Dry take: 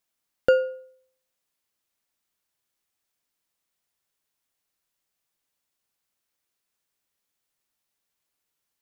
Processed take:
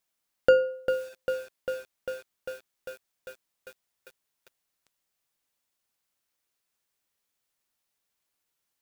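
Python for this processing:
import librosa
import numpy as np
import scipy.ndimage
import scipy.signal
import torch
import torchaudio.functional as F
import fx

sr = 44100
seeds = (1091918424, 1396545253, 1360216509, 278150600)

y = fx.hum_notches(x, sr, base_hz=50, count=9)
y = fx.echo_crushed(y, sr, ms=398, feedback_pct=80, bits=7, wet_db=-8)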